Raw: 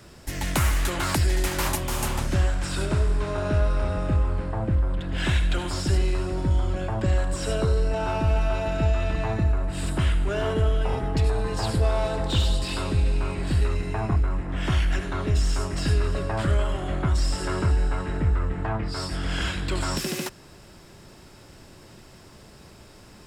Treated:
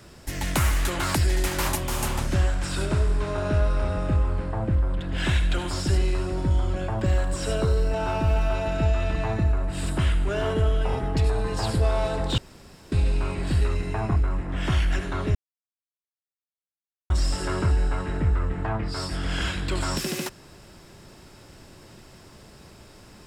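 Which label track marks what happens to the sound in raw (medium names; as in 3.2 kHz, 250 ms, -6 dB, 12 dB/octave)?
6.980000	8.530000	short-mantissa float mantissa of 6-bit
12.380000	12.920000	room tone
15.350000	17.100000	mute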